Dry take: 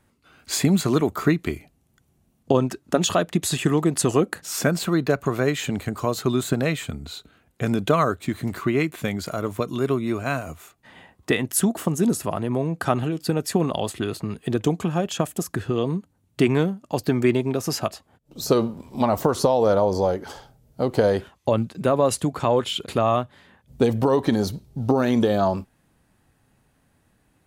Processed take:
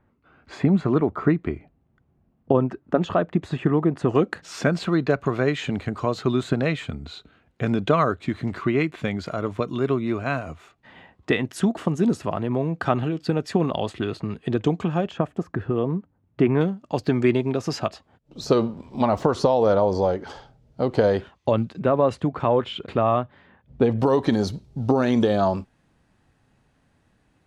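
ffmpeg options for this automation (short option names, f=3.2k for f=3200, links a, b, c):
-af "asetnsamples=n=441:p=0,asendcmd='4.15 lowpass f 3900;15.11 lowpass f 1700;16.61 lowpass f 4600;21.79 lowpass f 2400;23.99 lowpass f 6400',lowpass=1.6k"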